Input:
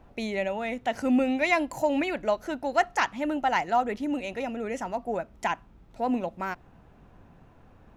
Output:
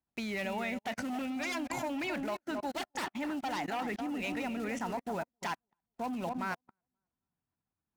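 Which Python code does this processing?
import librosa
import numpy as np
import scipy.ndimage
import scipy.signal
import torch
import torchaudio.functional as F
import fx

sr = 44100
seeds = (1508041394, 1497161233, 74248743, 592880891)

y = fx.block_float(x, sr, bits=5)
y = fx.peak_eq(y, sr, hz=520.0, db=-10.0, octaves=1.0)
y = fx.fold_sine(y, sr, drive_db=13, ceiling_db=-11.0)
y = fx.echo_filtered(y, sr, ms=266, feedback_pct=41, hz=1300.0, wet_db=-7.5)
y = fx.level_steps(y, sr, step_db=24)
y = fx.highpass(y, sr, hz=130.0, slope=6)
y = fx.high_shelf(y, sr, hz=8800.0, db=-9.0)
y = fx.upward_expand(y, sr, threshold_db=-44.0, expansion=2.5)
y = y * librosa.db_to_amplitude(-8.5)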